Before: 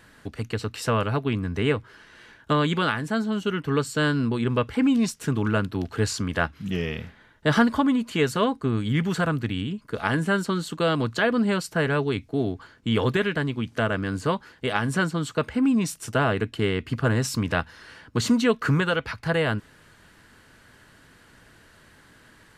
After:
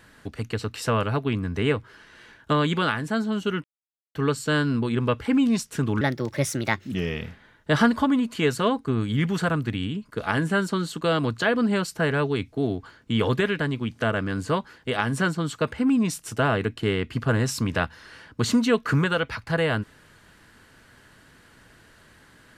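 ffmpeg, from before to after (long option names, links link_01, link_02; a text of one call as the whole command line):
ffmpeg -i in.wav -filter_complex "[0:a]asplit=4[link_01][link_02][link_03][link_04];[link_01]atrim=end=3.64,asetpts=PTS-STARTPTS,afade=type=out:start_time=3.636:duration=0.004:curve=hsin,apad=pad_dur=0.51[link_05];[link_02]atrim=start=3.64:end=5.504,asetpts=PTS-STARTPTS,afade=type=in:duration=0.004:curve=hsin[link_06];[link_03]atrim=start=5.5:end=6.68,asetpts=PTS-STARTPTS,asetrate=57330,aresample=44100,atrim=end_sample=40029,asetpts=PTS-STARTPTS[link_07];[link_04]atrim=start=6.676[link_08];[link_05][link_06]concat=n=2:v=0:a=1[link_09];[link_09][link_07]acrossfade=duration=0.004:curve1=hsin:curve2=hsin[link_10];[link_10][link_08]acrossfade=duration=0.004:curve1=hsin:curve2=hsin" out.wav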